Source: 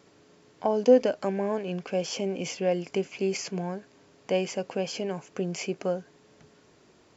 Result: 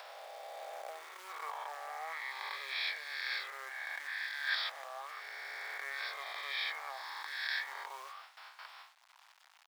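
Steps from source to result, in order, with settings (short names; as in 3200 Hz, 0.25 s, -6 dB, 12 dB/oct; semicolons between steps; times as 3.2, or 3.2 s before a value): spectral swells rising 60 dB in 1.34 s; in parallel at -9 dB: soft clip -24.5 dBFS, distortion -7 dB; on the sum: gate with hold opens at -41 dBFS; treble ducked by the level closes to 2800 Hz, closed at -18 dBFS; reverse; compressor 4:1, threshold -35 dBFS, peak gain reduction 19 dB; reverse; speed mistake 45 rpm record played at 33 rpm; companded quantiser 6-bit; steep high-pass 810 Hz 36 dB/oct; upward compressor, threshold -55 dBFS; high shelf 5200 Hz -11.5 dB; gain +8 dB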